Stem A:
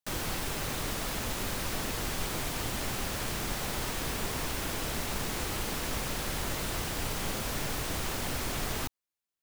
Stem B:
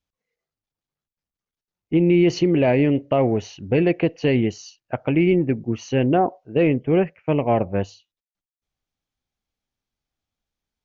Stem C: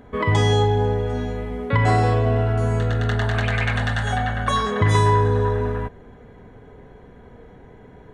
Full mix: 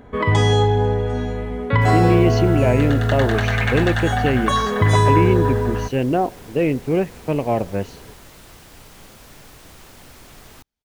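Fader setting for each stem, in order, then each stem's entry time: -10.5 dB, -1.0 dB, +2.0 dB; 1.75 s, 0.00 s, 0.00 s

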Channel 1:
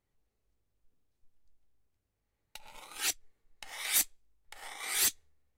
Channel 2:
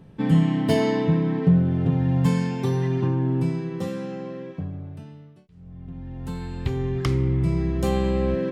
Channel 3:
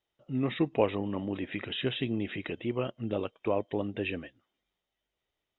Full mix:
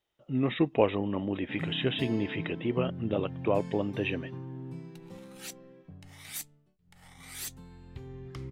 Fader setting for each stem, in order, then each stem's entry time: -11.0 dB, -18.0 dB, +2.0 dB; 2.40 s, 1.30 s, 0.00 s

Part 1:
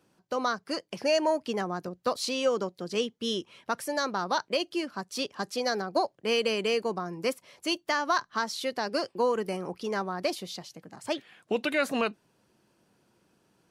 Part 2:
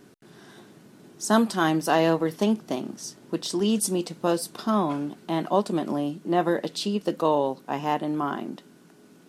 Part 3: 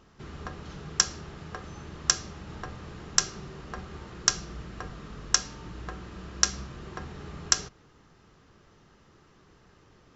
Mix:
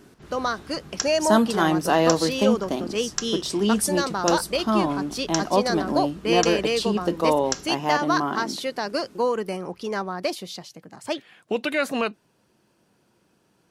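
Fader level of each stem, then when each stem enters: +3.0 dB, +1.5 dB, -5.0 dB; 0.00 s, 0.00 s, 0.00 s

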